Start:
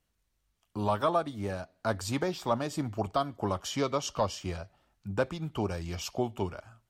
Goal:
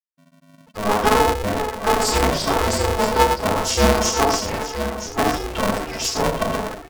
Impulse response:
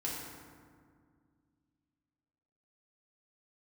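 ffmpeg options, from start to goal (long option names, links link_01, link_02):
-filter_complex "[0:a]aeval=exprs='val(0)+0.5*0.01*sgn(val(0))':channel_layout=same[link_01];[1:a]atrim=start_sample=2205,atrim=end_sample=6615[link_02];[link_01][link_02]afir=irnorm=-1:irlink=0,acrossover=split=160|830|4400[link_03][link_04][link_05][link_06];[link_05]acompressor=threshold=-45dB:ratio=6[link_07];[link_03][link_04][link_07][link_06]amix=inputs=4:normalize=0,lowshelf=frequency=420:gain=-10.5,aecho=1:1:4.5:0.65,aecho=1:1:971:0.355,dynaudnorm=framelen=420:gausssize=3:maxgain=8dB,afftfilt=real='re*gte(hypot(re,im),0.0316)':imag='im*gte(hypot(re,im),0.0316)':win_size=1024:overlap=0.75,lowshelf=frequency=200:gain=-6,aeval=exprs='val(0)*sgn(sin(2*PI*210*n/s))':channel_layout=same,volume=6dB"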